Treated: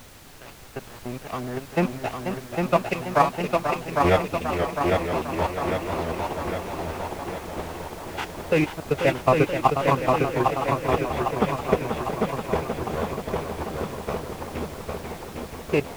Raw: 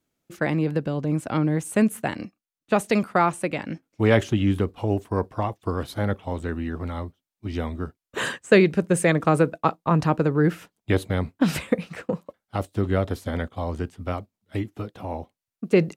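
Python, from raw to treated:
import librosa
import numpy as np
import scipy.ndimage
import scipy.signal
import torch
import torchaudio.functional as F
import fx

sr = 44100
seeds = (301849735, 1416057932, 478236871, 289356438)

y = fx.fade_in_head(x, sr, length_s=1.22)
y = fx.dereverb_blind(y, sr, rt60_s=0.75)
y = fx.level_steps(y, sr, step_db=9)
y = scipy.signal.sosfilt(scipy.signal.cheby1(6, 9, 3500.0, 'lowpass', fs=sr, output='sos'), y)
y = np.sign(y) * np.maximum(np.abs(y) - 10.0 ** (-39.0 / 20.0), 0.0)
y = fx.pitch_keep_formants(y, sr, semitones=-3.5)
y = fx.dmg_noise_colour(y, sr, seeds[0], colour='pink', level_db=-55.0)
y = fx.echo_feedback(y, sr, ms=804, feedback_pct=59, wet_db=-3.5)
y = fx.echo_warbled(y, sr, ms=483, feedback_pct=69, rate_hz=2.8, cents=132, wet_db=-8.0)
y = y * librosa.db_to_amplitude(8.5)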